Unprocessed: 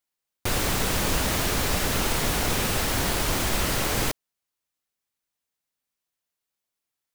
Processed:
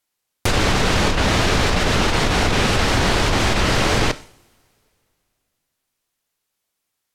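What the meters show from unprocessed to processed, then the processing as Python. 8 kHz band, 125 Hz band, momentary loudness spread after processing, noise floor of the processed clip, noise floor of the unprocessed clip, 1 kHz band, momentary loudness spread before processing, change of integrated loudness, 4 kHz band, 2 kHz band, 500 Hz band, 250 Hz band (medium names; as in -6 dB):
+0.5 dB, +9.0 dB, 3 LU, -78 dBFS, under -85 dBFS, +8.5 dB, 3 LU, +6.5 dB, +7.0 dB, +8.5 dB, +8.5 dB, +8.5 dB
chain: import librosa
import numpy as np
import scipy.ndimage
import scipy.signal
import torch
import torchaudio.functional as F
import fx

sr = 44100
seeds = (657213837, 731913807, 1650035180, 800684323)

y = fx.rev_double_slope(x, sr, seeds[0], early_s=0.5, late_s=2.8, knee_db=-26, drr_db=14.5)
y = fx.env_lowpass_down(y, sr, base_hz=850.0, full_db=-12.5)
y = fx.over_compress(y, sr, threshold_db=-25.0, ratio=-1.0)
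y = y * librosa.db_to_amplitude(8.5)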